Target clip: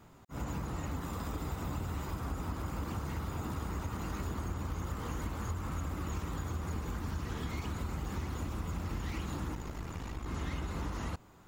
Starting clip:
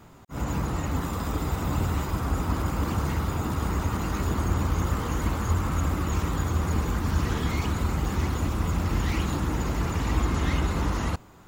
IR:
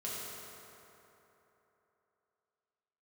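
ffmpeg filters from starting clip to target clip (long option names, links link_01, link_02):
-filter_complex "[0:a]acompressor=threshold=-26dB:ratio=6,asettb=1/sr,asplit=3[link_01][link_02][link_03];[link_01]atrim=end=9.544[link_04];[link_02]atrim=start=9.54:end=10.26,asetpts=PTS-STARTPTS,afade=type=in:duration=0.004:curve=qsin,afade=type=out:start_time=0.716:duration=0.004:curve=qsin,aeval=exprs='(tanh(12.6*val(0)+0.75)-tanh(0.75))/12.6':channel_layout=same[link_05];[link_03]atrim=start=10.256[link_06];[link_04][link_05]acrossfade=duration=0.004:curve1=hsin:curve2=qsin[link_07];[link_07][link_06]acrossfade=duration=0.004:curve1=qsin:curve2=hsin,volume=-7dB"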